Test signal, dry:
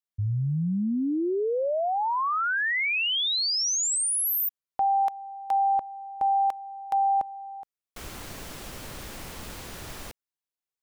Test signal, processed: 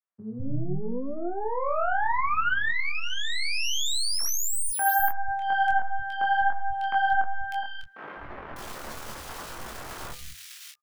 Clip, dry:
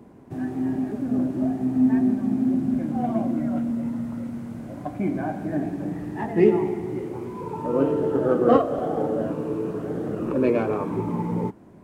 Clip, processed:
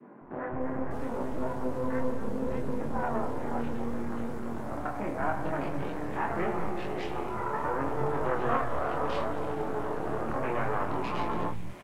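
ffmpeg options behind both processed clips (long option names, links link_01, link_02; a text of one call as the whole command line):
ffmpeg -i in.wav -filter_complex "[0:a]bandreject=frequency=100.7:width_type=h:width=4,bandreject=frequency=201.4:width_type=h:width=4,bandreject=frequency=302.1:width_type=h:width=4,bandreject=frequency=402.8:width_type=h:width=4,bandreject=frequency=503.5:width_type=h:width=4,bandreject=frequency=604.2:width_type=h:width=4,bandreject=frequency=704.9:width_type=h:width=4,bandreject=frequency=805.6:width_type=h:width=4,bandreject=frequency=906.3:width_type=h:width=4,bandreject=frequency=1007:width_type=h:width=4,bandreject=frequency=1107.7:width_type=h:width=4,bandreject=frequency=1208.4:width_type=h:width=4,bandreject=frequency=1309.1:width_type=h:width=4,acrossover=split=160|1600[link_01][link_02][link_03];[link_02]acompressor=threshold=-33dB:ratio=4:attack=2:release=597:knee=2.83:detection=peak[link_04];[link_01][link_04][link_03]amix=inputs=3:normalize=0,adynamicequalizer=threshold=0.00501:dfrequency=710:dqfactor=0.92:tfrequency=710:tqfactor=0.92:attack=5:release=100:ratio=0.375:range=3.5:mode=boostabove:tftype=bell,asplit=2[link_05][link_06];[link_06]acompressor=threshold=-36dB:ratio=6:attack=0.22:release=41:knee=1:detection=rms,volume=1dB[link_07];[link_05][link_07]amix=inputs=2:normalize=0,aeval=exprs='0.2*(cos(1*acos(clip(val(0)/0.2,-1,1)))-cos(1*PI/2))+0.0794*(cos(2*acos(clip(val(0)/0.2,-1,1)))-cos(2*PI/2))+0.0398*(cos(6*acos(clip(val(0)/0.2,-1,1)))-cos(6*PI/2))':channel_layout=same,equalizer=frequency=1300:width_type=o:width=1.7:gain=7,flanger=delay=20:depth=7.5:speed=0.74,asplit=2[link_08][link_09];[link_09]adelay=14,volume=-11.5dB[link_10];[link_08][link_10]amix=inputs=2:normalize=0,acrossover=split=170|2300[link_11][link_12][link_13];[link_11]adelay=200[link_14];[link_13]adelay=600[link_15];[link_14][link_12][link_15]amix=inputs=3:normalize=0,volume=-4.5dB" out.wav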